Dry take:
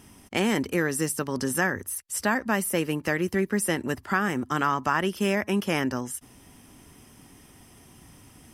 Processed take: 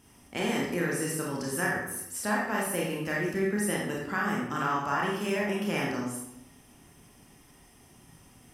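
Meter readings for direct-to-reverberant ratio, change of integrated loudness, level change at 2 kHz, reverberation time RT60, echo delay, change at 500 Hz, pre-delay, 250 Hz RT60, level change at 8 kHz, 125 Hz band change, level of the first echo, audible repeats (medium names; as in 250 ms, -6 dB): -4.0 dB, -3.5 dB, -3.0 dB, 0.80 s, no echo, -3.0 dB, 26 ms, 0.90 s, -4.0 dB, -3.5 dB, no echo, no echo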